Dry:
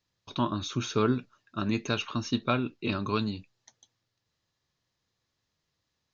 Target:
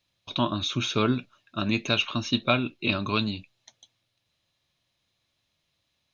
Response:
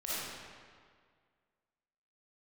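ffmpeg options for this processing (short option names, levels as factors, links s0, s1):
-af "superequalizer=7b=0.708:8b=1.58:12b=2.24:13b=2.24:16b=2.24,volume=1.26"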